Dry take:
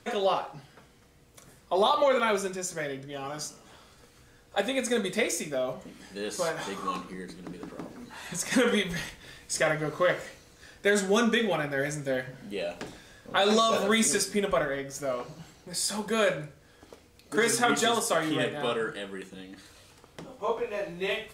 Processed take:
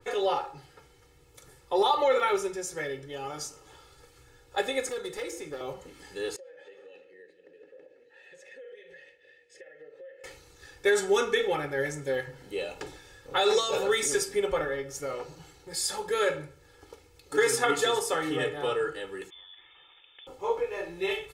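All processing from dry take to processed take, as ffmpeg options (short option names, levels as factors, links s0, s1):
-filter_complex "[0:a]asettb=1/sr,asplit=3[s0][s1][s2];[s0]atrim=end=4.894[s3];[s1]atrim=start=4.89:end=5.61,asetpts=PTS-STARTPTS,afade=t=in:d=0.004:c=qsin,afade=t=out:st=0.716:d=0.004:c=qsin,equalizer=f=2400:w=2.2:g=-5.5,acrossover=split=350|1400|2900[s4][s5][s6][s7];[s4]acompressor=threshold=0.01:ratio=3[s8];[s5]acompressor=threshold=0.0178:ratio=3[s9];[s6]acompressor=threshold=0.00794:ratio=3[s10];[s7]acompressor=threshold=0.00562:ratio=3[s11];[s8][s9][s10][s11]amix=inputs=4:normalize=0,asoftclip=type=hard:threshold=0.0299[s12];[s2]atrim=start=5.606[s13];[s3][s12]acrossfade=d=0.004:c1=hsin:c2=qsin[s14];[s14][s13]acrossfade=d=0.004:c1=qsin:c2=hsin,asettb=1/sr,asplit=3[s15][s16][s17];[s15]atrim=end=6.364[s18];[s16]atrim=start=6.36:end=10.24,asetpts=PTS-STARTPTS,afade=t=in:d=0.004:c=qsin,afade=t=out:st=3.876:d=0.004:c=qsin,asplit=3[s19][s20][s21];[s19]bandpass=f=530:t=q:w=8,volume=1[s22];[s20]bandpass=f=1840:t=q:w=8,volume=0.501[s23];[s21]bandpass=f=2480:t=q:w=8,volume=0.355[s24];[s22][s23][s24]amix=inputs=3:normalize=0,acompressor=threshold=0.00447:ratio=5:attack=3.2:release=140:knee=1:detection=peak[s25];[s17]atrim=start=10.236[s26];[s18][s25]acrossfade=d=0.004:c1=hsin:c2=qsin[s27];[s27][s26]acrossfade=d=0.004:c1=qsin:c2=hsin,asettb=1/sr,asplit=3[s28][s29][s30];[s28]atrim=end=19.304[s31];[s29]atrim=start=19.3:end=20.27,asetpts=PTS-STARTPTS,afade=t=in:d=0.004:c=qsin,afade=t=out:st=0.966:d=0.004:c=qsin,acompressor=threshold=0.00355:ratio=3:attack=3.2:release=140:knee=1:detection=peak,lowpass=f=3100:t=q:w=0.5098,lowpass=f=3100:t=q:w=0.6013,lowpass=f=3100:t=q:w=0.9,lowpass=f=3100:t=q:w=2.563,afreqshift=-3700[s32];[s30]atrim=start=20.266[s33];[s31][s32]acrossfade=d=0.004:c1=hsin:c2=qsin[s34];[s34][s33]acrossfade=d=0.004:c1=qsin:c2=hsin,aecho=1:1:2.3:0.93,adynamicequalizer=threshold=0.0112:dfrequency=2400:dqfactor=0.7:tfrequency=2400:tqfactor=0.7:attack=5:release=100:ratio=0.375:range=1.5:mode=cutabove:tftype=highshelf,volume=0.708"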